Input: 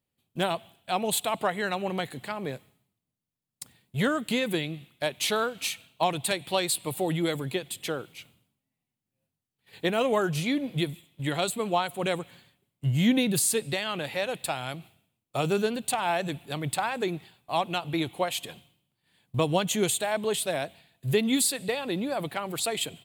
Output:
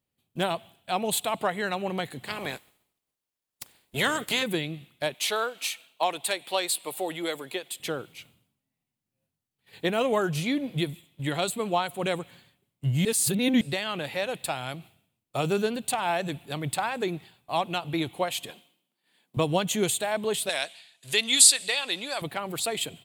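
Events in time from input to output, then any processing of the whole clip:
0:02.27–0:04.42: ceiling on every frequency bin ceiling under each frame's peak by 19 dB
0:05.14–0:07.80: high-pass filter 410 Hz
0:13.05–0:13.61: reverse
0:18.50–0:19.37: high-pass filter 220 Hz 24 dB per octave
0:20.49–0:22.22: meter weighting curve ITU-R 468

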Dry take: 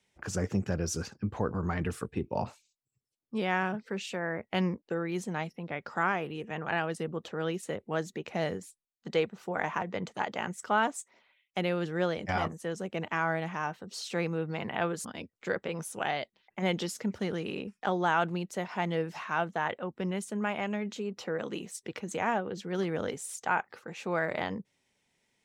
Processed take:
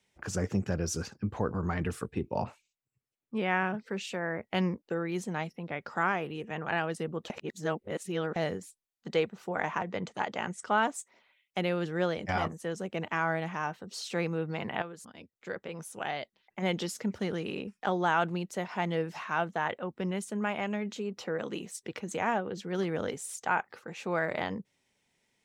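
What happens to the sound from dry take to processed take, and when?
0:02.44–0:03.74: high shelf with overshoot 3,300 Hz −6.5 dB, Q 1.5
0:07.30–0:08.36: reverse
0:09.52–0:10.87: low-pass filter 10,000 Hz 24 dB per octave
0:14.82–0:16.95: fade in, from −12.5 dB

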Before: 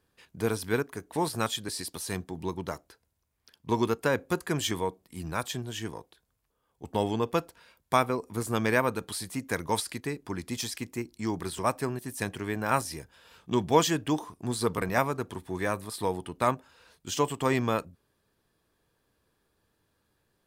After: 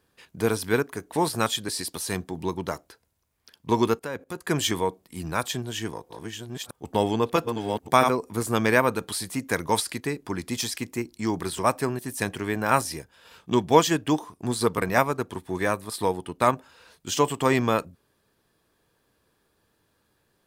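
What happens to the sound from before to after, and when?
0:03.99–0:04.47: output level in coarse steps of 18 dB
0:05.41–0:08.24: delay that plays each chunk backwards 650 ms, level −5 dB
0:12.88–0:16.53: transient designer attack 0 dB, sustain −4 dB
whole clip: low-shelf EQ 92 Hz −5.5 dB; level +5 dB

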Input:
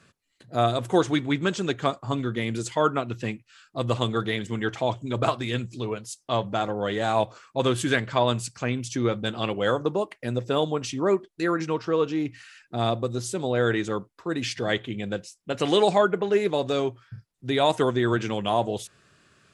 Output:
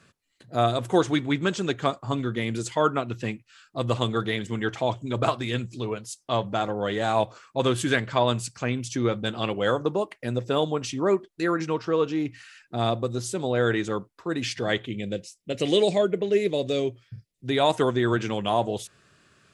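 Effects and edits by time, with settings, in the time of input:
0:14.86–0:17.48: flat-topped bell 1,100 Hz −12.5 dB 1.3 octaves

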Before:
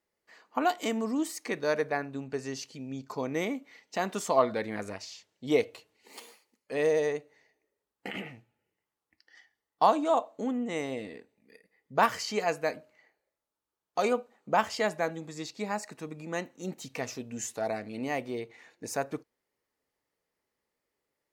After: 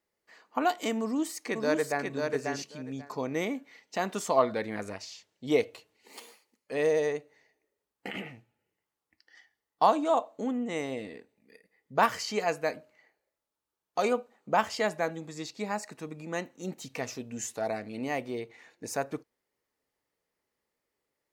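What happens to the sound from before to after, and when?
0:01.01–0:02.08: delay throw 540 ms, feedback 15%, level −4 dB

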